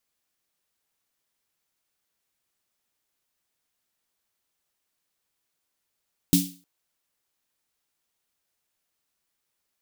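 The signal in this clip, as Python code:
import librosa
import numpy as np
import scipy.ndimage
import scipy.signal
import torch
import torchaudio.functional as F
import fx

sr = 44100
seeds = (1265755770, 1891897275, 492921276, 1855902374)

y = fx.drum_snare(sr, seeds[0], length_s=0.31, hz=180.0, second_hz=280.0, noise_db=-4.0, noise_from_hz=3000.0, decay_s=0.35, noise_decay_s=0.37)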